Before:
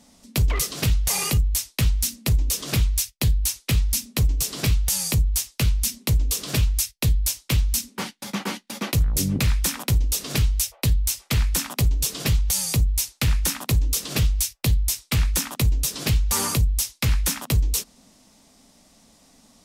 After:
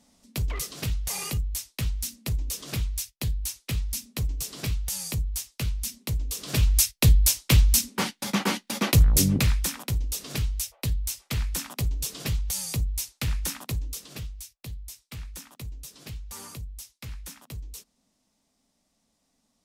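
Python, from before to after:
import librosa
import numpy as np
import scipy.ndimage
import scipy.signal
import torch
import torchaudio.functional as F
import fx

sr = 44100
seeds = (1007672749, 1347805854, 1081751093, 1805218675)

y = fx.gain(x, sr, db=fx.line((6.34, -8.0), (6.79, 3.0), (9.18, 3.0), (9.81, -7.0), (13.56, -7.0), (14.37, -18.0)))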